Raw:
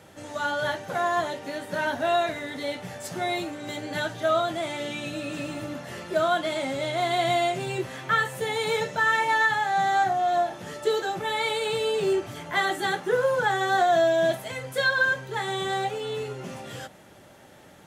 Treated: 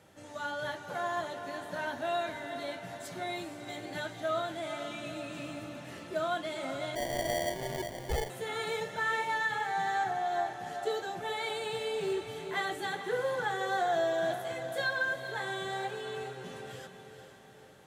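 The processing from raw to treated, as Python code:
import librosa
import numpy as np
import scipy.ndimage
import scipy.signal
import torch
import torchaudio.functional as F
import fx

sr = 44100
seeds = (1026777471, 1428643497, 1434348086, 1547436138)

y = fx.echo_diffused(x, sr, ms=453, feedback_pct=50, wet_db=-9)
y = fx.sample_hold(y, sr, seeds[0], rate_hz=1300.0, jitter_pct=0, at=(6.95, 8.3))
y = F.gain(torch.from_numpy(y), -9.0).numpy()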